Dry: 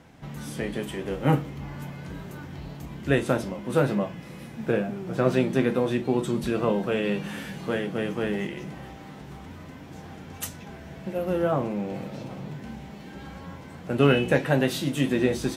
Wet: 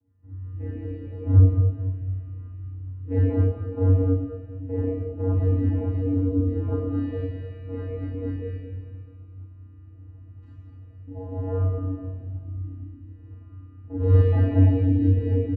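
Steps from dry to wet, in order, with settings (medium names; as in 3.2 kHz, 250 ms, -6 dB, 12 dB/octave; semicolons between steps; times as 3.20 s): median filter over 9 samples; in parallel at -1.5 dB: peak limiter -16 dBFS, peak gain reduction 8 dB; on the sum: vocoder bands 8, square 93.3 Hz; on a send: feedback delay 215 ms, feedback 51%, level -10 dB; on the sum: Schroeder reverb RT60 1.8 s, combs from 28 ms, DRR -8 dB; spectral contrast expander 1.5:1; trim -4.5 dB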